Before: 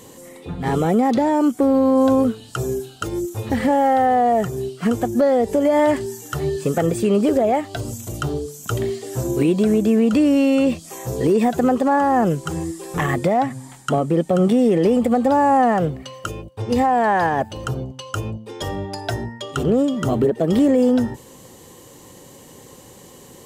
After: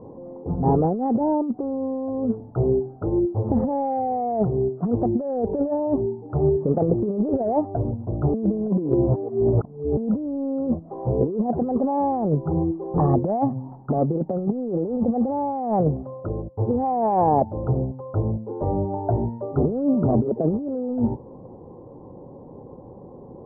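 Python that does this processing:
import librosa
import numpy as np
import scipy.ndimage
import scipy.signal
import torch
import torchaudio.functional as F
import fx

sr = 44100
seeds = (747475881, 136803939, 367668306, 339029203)

y = fx.moving_average(x, sr, points=22, at=(5.73, 6.28), fade=0.02)
y = fx.edit(y, sr, fx.reverse_span(start_s=8.34, length_s=1.63), tone=tone)
y = scipy.signal.sosfilt(scipy.signal.butter(6, 910.0, 'lowpass', fs=sr, output='sos'), y)
y = fx.over_compress(y, sr, threshold_db=-20.0, ratio=-0.5)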